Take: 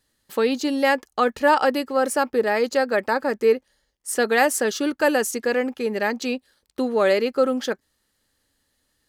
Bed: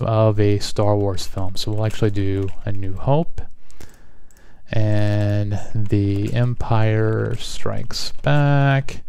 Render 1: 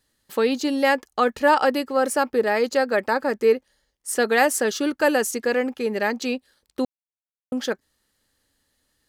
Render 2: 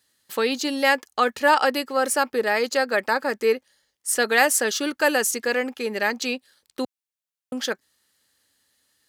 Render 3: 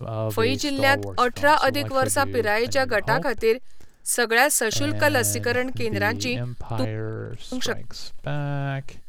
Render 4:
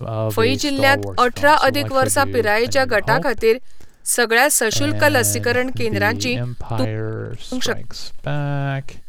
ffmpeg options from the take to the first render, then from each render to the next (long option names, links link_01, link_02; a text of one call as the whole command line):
ffmpeg -i in.wav -filter_complex "[0:a]asplit=3[link_01][link_02][link_03];[link_01]atrim=end=6.85,asetpts=PTS-STARTPTS,afade=type=out:start_time=6.846:duration=0.004:curve=hsin[link_04];[link_02]atrim=start=6.85:end=7.52,asetpts=PTS-STARTPTS,volume=0[link_05];[link_03]atrim=start=7.52,asetpts=PTS-STARTPTS,afade=type=in:duration=0.004:curve=hsin[link_06];[link_04][link_05][link_06]concat=n=3:v=0:a=1" out.wav
ffmpeg -i in.wav -af "highpass=85,tiltshelf=frequency=970:gain=-4.5" out.wav
ffmpeg -i in.wav -i bed.wav -filter_complex "[1:a]volume=-11.5dB[link_01];[0:a][link_01]amix=inputs=2:normalize=0" out.wav
ffmpeg -i in.wav -af "volume=5dB,alimiter=limit=-1dB:level=0:latency=1" out.wav